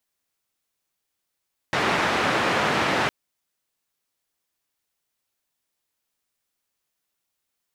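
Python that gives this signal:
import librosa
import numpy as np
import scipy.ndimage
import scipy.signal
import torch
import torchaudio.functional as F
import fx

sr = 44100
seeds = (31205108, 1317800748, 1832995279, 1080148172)

y = fx.band_noise(sr, seeds[0], length_s=1.36, low_hz=120.0, high_hz=1800.0, level_db=-22.5)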